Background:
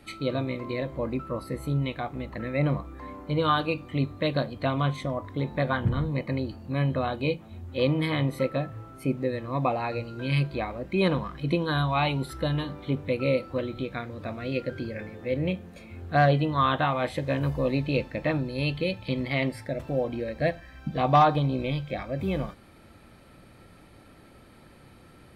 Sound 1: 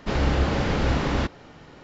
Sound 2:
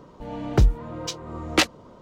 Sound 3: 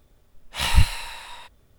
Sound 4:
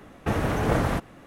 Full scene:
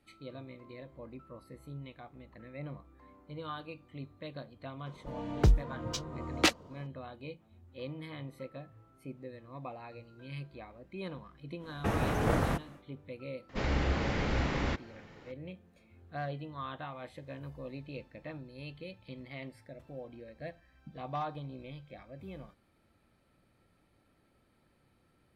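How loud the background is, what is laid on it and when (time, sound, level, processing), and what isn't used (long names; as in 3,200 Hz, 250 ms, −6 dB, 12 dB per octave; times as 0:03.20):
background −17.5 dB
0:04.86: mix in 2 −6.5 dB
0:11.58: mix in 4 −5.5 dB, fades 0.10 s
0:13.49: mix in 1 −8.5 dB + parametric band 2,100 Hz +5 dB 0.44 octaves
not used: 3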